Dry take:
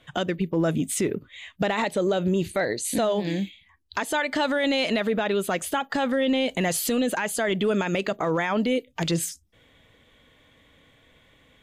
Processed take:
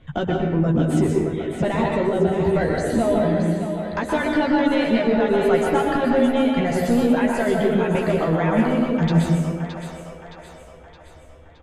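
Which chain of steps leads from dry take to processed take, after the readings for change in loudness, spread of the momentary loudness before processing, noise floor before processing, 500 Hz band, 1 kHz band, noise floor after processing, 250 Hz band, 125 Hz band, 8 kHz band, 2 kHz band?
+5.0 dB, 6 LU, −59 dBFS, +5.5 dB, +4.5 dB, −45 dBFS, +7.0 dB, +9.5 dB, −8.5 dB, +1.0 dB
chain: RIAA equalisation playback
reverb reduction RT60 1.9 s
speech leveller 0.5 s
soft clipping −13 dBFS, distortion −19 dB
double-tracking delay 13 ms −4.5 dB
on a send: echo with a time of its own for lows and highs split 470 Hz, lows 227 ms, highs 618 ms, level −8 dB
on the sum: dense smooth reverb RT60 1.1 s, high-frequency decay 0.6×, pre-delay 110 ms, DRR −0.5 dB
level −1 dB

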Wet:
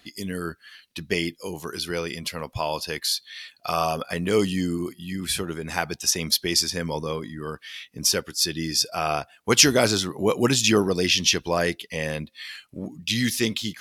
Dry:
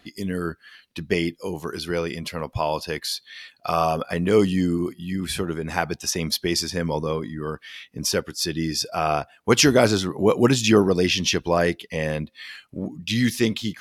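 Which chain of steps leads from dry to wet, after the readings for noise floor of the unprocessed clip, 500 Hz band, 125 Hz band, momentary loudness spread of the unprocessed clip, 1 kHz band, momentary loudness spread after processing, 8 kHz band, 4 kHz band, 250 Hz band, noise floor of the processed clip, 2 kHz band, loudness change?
−59 dBFS, −3.5 dB, −4.0 dB, 14 LU, −2.5 dB, 15 LU, +4.0 dB, +3.0 dB, −4.0 dB, −60 dBFS, 0.0 dB, −0.5 dB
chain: high-shelf EQ 2,300 Hz +9 dB
level −4 dB

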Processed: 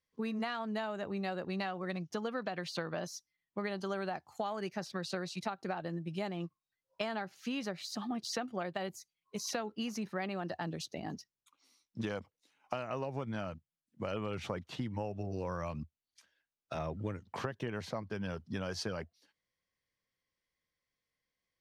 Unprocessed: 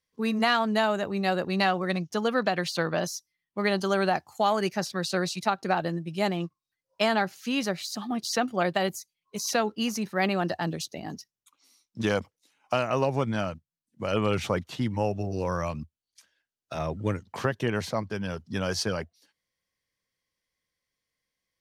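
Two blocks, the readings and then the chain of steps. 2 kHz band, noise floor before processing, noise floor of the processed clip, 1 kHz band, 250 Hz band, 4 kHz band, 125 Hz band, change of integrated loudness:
−12.0 dB, below −85 dBFS, below −85 dBFS, −12.0 dB, −9.5 dB, −11.5 dB, −9.5 dB, −11.0 dB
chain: high-shelf EQ 6,600 Hz −10.5 dB
downward compressor, threshold −31 dBFS, peak gain reduction 12 dB
level −3 dB

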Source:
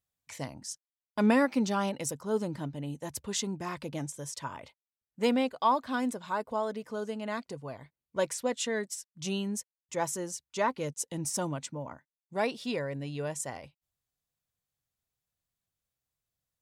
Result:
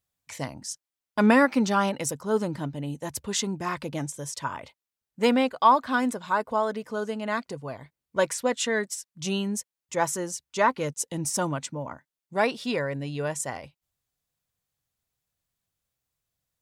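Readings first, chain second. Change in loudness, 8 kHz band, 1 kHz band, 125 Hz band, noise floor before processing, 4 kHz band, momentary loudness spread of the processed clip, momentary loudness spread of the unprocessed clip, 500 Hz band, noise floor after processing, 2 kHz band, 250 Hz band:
+6.0 dB, +4.5 dB, +7.5 dB, +4.5 dB, below −85 dBFS, +5.0 dB, 15 LU, 14 LU, +5.0 dB, below −85 dBFS, +8.0 dB, +4.5 dB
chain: dynamic equaliser 1,400 Hz, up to +5 dB, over −45 dBFS, Q 1.1
level +4.5 dB

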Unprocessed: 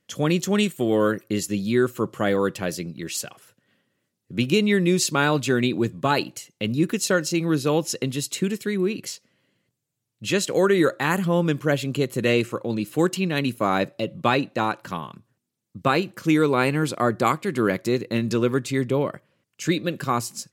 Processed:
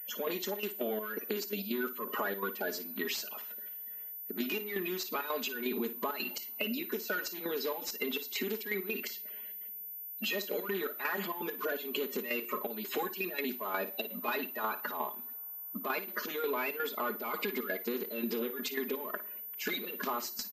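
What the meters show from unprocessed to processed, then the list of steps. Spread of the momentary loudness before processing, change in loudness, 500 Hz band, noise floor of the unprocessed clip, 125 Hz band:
10 LU, −12.0 dB, −13.0 dB, −80 dBFS, −27.5 dB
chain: spectral magnitudes quantised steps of 30 dB
comb filter 4.8 ms, depth 84%
mid-hump overdrive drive 15 dB, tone 4,700 Hz, clips at −4.5 dBFS
brickwall limiter −14 dBFS, peak gain reduction 9 dB
gate pattern "x..xxx.x.x" 167 BPM −12 dB
downward compressor 6 to 1, threshold −33 dBFS, peak gain reduction 14 dB
linear-phase brick-wall high-pass 190 Hz
on a send: flutter between parallel walls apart 9.6 metres, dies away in 0.24 s
on the sum: coupled-rooms reverb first 0.42 s, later 4.9 s, from −20 dB, DRR 19 dB
switching amplifier with a slow clock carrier 14,000 Hz

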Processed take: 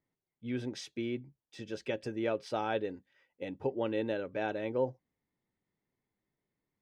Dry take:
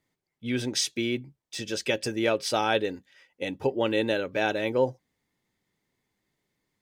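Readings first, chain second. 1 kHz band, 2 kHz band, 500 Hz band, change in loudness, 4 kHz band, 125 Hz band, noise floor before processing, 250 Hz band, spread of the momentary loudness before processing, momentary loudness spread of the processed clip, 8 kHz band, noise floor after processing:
−8.0 dB, −11.5 dB, −7.0 dB, −8.5 dB, −16.0 dB, −6.5 dB, −85 dBFS, −6.5 dB, 10 LU, 11 LU, below −20 dB, below −85 dBFS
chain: low-pass filter 1,300 Hz 6 dB per octave
level −6.5 dB

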